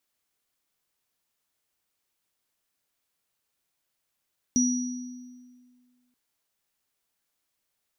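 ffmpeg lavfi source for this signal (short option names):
-f lavfi -i "aevalsrc='0.106*pow(10,-3*t/1.84)*sin(2*PI*248*t)+0.0794*pow(10,-3*t/1.13)*sin(2*PI*5810*t)':d=1.58:s=44100"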